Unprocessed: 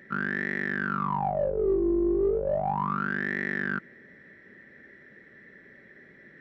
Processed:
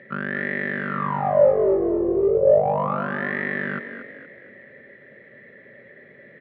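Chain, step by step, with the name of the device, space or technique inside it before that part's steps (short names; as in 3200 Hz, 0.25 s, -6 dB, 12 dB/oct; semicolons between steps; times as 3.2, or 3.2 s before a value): frequency-shifting delay pedal into a guitar cabinet (frequency-shifting echo 0.235 s, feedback 46%, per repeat +39 Hz, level -10 dB; speaker cabinet 110–3400 Hz, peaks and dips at 120 Hz +4 dB, 180 Hz -5 dB, 310 Hz -9 dB, 560 Hz +9 dB, 880 Hz -5 dB, 1500 Hz -8 dB); gain +6 dB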